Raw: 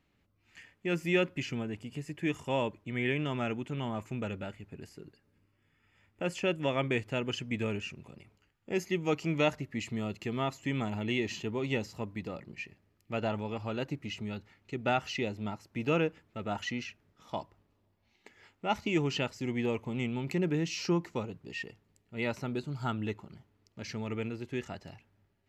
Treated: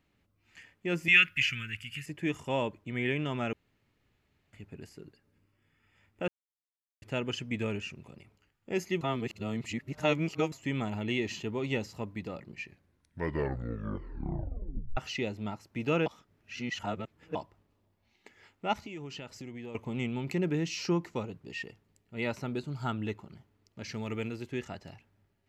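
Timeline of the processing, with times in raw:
1.08–2.06 EQ curve 110 Hz 0 dB, 770 Hz -29 dB, 1400 Hz +8 dB, 2700 Hz +14 dB, 3900 Hz +4 dB, 7800 Hz +4 dB, 11000 Hz +10 dB
3.53–4.53 room tone
6.28–7.02 mute
9.01–10.52 reverse
12.6 tape stop 2.37 s
16.06–17.35 reverse
18.73–19.75 compressor 4:1, threshold -41 dBFS
23.94–24.48 high shelf 4200 Hz +7.5 dB

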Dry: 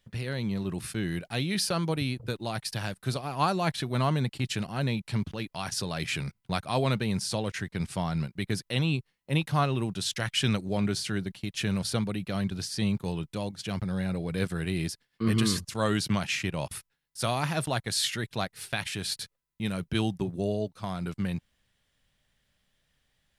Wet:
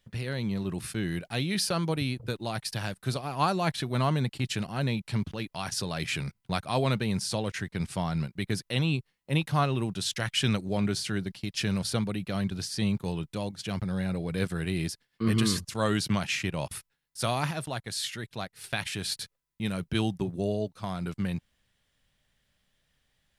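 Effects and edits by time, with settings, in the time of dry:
11.26–11.79 bell 5000 Hz +7.5 dB 0.31 oct
17.51–18.64 gain -5 dB

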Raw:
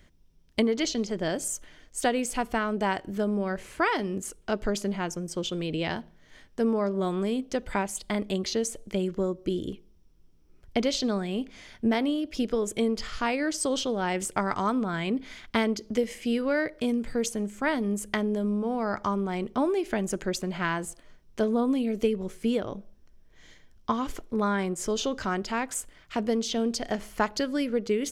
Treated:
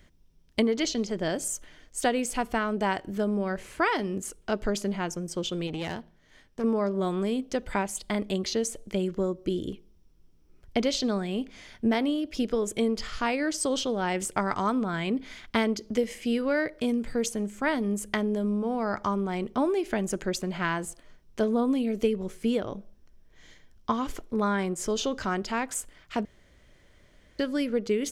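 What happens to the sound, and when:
5.67–6.64 tube stage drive 26 dB, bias 0.65
26.25–27.39 room tone

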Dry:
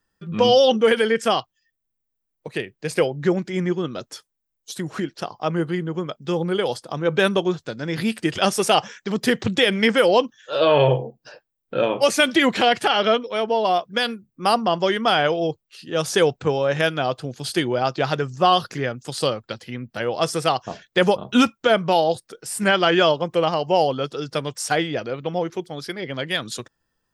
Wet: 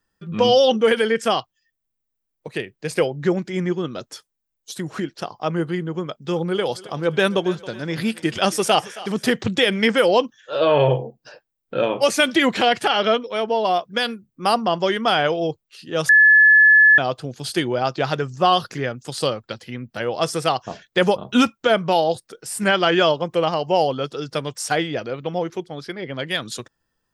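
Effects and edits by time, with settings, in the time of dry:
6–9.32 thinning echo 0.272 s, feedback 52%, level -17 dB
10.4–10.9 high shelf 4000 Hz -7.5 dB
16.09–16.98 bleep 1720 Hz -8 dBFS
25.62–26.18 high shelf 7400 Hz -> 4500 Hz -12 dB

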